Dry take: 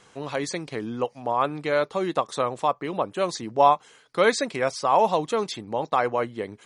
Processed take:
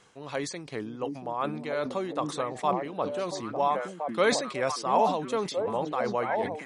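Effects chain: tremolo 2.6 Hz, depth 47%; delay with a stepping band-pass 0.682 s, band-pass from 230 Hz, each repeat 1.4 oct, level -1 dB; sustainer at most 83 dB/s; gain -4 dB

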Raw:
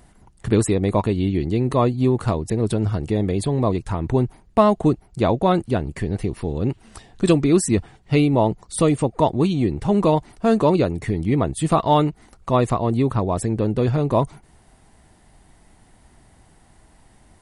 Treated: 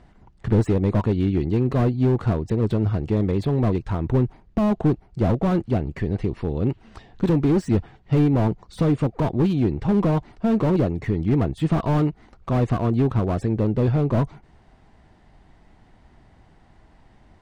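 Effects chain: air absorption 160 m; slew limiter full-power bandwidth 50 Hz

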